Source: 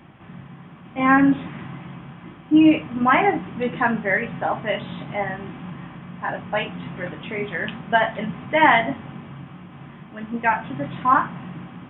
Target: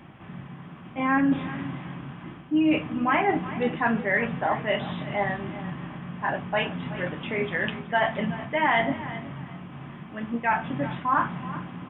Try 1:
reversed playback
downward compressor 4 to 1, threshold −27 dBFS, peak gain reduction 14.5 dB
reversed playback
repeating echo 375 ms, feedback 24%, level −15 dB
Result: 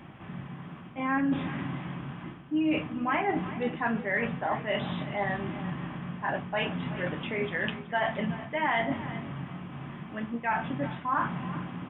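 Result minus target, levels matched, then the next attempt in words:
downward compressor: peak gain reduction +5.5 dB
reversed playback
downward compressor 4 to 1, threshold −20 dBFS, peak gain reduction 9 dB
reversed playback
repeating echo 375 ms, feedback 24%, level −15 dB

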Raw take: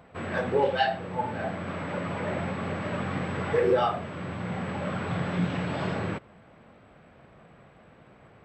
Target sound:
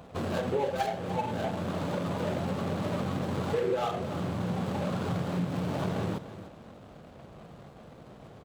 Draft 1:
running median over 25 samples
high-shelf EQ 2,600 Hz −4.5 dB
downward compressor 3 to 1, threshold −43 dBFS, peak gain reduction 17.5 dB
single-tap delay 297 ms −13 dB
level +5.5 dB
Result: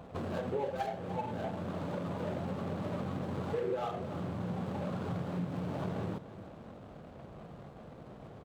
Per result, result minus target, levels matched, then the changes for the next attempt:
downward compressor: peak gain reduction +5 dB; 4,000 Hz band −4.5 dB
change: downward compressor 3 to 1, threshold −35 dBFS, peak gain reduction 12 dB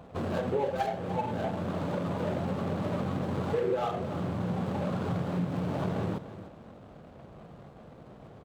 4,000 Hz band −4.5 dB
change: high-shelf EQ 2,600 Hz +3 dB

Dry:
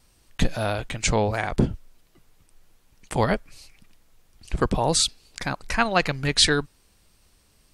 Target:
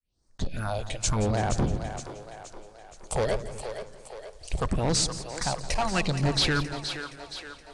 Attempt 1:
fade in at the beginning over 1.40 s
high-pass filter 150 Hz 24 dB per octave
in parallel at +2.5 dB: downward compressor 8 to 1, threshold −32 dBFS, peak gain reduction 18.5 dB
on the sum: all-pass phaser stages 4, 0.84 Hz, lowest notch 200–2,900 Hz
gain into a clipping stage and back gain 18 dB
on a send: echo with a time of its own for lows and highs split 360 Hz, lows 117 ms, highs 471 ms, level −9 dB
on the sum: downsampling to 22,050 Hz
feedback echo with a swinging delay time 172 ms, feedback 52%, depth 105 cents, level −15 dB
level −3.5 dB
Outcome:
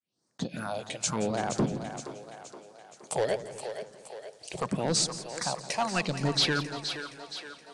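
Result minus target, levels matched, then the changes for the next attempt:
downward compressor: peak gain reduction +8.5 dB; 125 Hz band −4.5 dB
change: downward compressor 8 to 1, threshold −22.5 dBFS, peak gain reduction 10 dB
remove: high-pass filter 150 Hz 24 dB per octave

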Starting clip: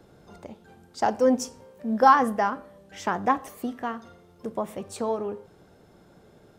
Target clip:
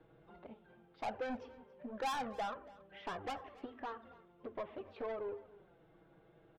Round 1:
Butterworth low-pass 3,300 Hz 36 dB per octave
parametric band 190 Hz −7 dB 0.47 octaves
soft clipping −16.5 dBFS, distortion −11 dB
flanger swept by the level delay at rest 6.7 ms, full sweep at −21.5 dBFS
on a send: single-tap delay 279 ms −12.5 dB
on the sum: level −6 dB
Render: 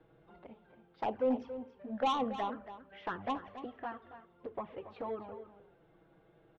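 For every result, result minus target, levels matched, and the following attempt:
echo-to-direct +8.5 dB; soft clipping: distortion −7 dB
Butterworth low-pass 3,300 Hz 36 dB per octave
parametric band 190 Hz −7 dB 0.47 octaves
soft clipping −16.5 dBFS, distortion −11 dB
flanger swept by the level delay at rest 6.7 ms, full sweep at −21.5 dBFS
on a send: single-tap delay 279 ms −21 dB
on the sum: level −6 dB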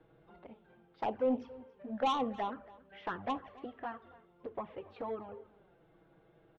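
soft clipping: distortion −7 dB
Butterworth low-pass 3,300 Hz 36 dB per octave
parametric band 190 Hz −7 dB 0.47 octaves
soft clipping −26.5 dBFS, distortion −4 dB
flanger swept by the level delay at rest 6.7 ms, full sweep at −21.5 dBFS
on a send: single-tap delay 279 ms −21 dB
on the sum: level −6 dB

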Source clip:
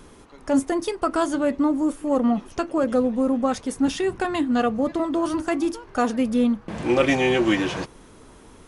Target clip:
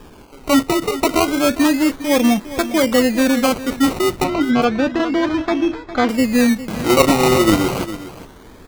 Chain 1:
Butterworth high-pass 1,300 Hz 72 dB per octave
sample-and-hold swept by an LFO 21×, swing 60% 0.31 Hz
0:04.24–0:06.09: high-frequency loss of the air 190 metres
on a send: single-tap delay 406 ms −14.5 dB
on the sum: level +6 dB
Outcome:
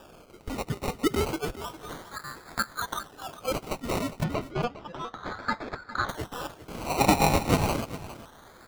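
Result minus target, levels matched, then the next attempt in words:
1,000 Hz band +5.0 dB
sample-and-hold swept by an LFO 21×, swing 60% 0.31 Hz
0:04.24–0:06.09: high-frequency loss of the air 190 metres
on a send: single-tap delay 406 ms −14.5 dB
on the sum: level +6 dB

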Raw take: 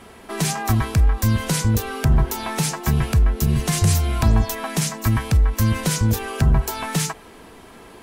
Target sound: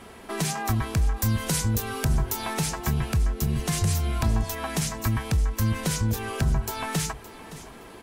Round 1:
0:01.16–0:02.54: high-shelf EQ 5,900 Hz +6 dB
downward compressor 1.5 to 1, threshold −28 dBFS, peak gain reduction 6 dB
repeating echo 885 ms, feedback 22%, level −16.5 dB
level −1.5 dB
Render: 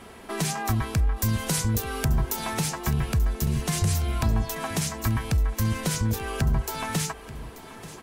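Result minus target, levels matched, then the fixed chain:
echo 318 ms late
0:01.16–0:02.54: high-shelf EQ 5,900 Hz +6 dB
downward compressor 1.5 to 1, threshold −28 dBFS, peak gain reduction 6 dB
repeating echo 567 ms, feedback 22%, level −16.5 dB
level −1.5 dB

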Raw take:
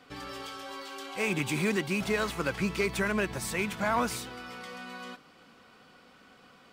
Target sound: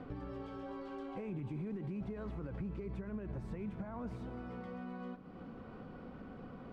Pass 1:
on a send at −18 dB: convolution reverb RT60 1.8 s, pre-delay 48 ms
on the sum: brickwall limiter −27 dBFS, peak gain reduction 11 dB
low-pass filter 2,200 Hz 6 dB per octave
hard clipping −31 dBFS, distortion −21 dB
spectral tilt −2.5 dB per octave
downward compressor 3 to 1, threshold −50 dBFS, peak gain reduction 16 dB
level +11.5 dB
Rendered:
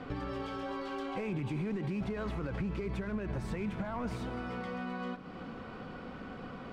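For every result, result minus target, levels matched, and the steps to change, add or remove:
2,000 Hz band +6.0 dB; downward compressor: peak gain reduction −5.5 dB
change: low-pass filter 590 Hz 6 dB per octave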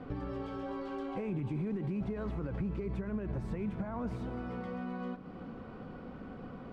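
downward compressor: peak gain reduction −5.5 dB
change: downward compressor 3 to 1, threshold −58.5 dBFS, peak gain reduction 21.5 dB

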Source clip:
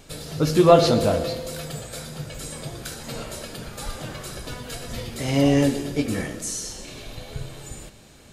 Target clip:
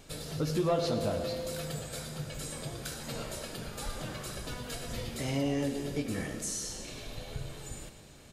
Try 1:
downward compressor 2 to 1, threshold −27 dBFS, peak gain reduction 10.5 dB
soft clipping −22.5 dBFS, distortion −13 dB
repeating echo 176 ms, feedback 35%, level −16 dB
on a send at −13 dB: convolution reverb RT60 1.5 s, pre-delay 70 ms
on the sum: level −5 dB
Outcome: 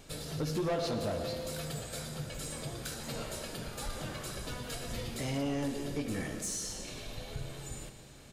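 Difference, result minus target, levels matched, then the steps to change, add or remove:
echo 79 ms late; soft clipping: distortion +14 dB
change: soft clipping −12.5 dBFS, distortion −26 dB
change: repeating echo 97 ms, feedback 35%, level −16 dB

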